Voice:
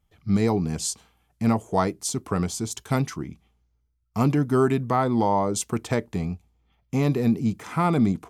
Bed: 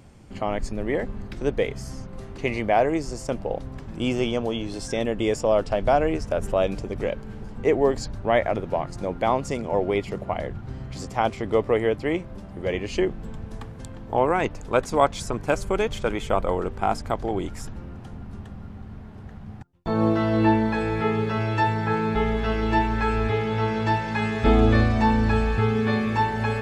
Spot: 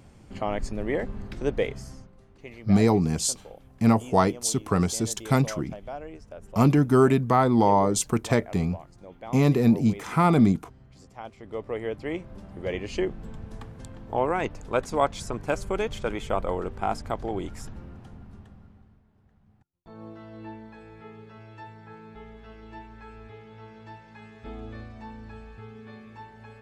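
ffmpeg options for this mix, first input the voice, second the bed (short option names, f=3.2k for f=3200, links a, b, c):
-filter_complex "[0:a]adelay=2400,volume=2dB[a];[1:a]volume=11.5dB,afade=t=out:st=1.64:d=0.51:silence=0.16788,afade=t=in:st=11.34:d=1.13:silence=0.211349,afade=t=out:st=17.71:d=1.31:silence=0.125893[b];[a][b]amix=inputs=2:normalize=0"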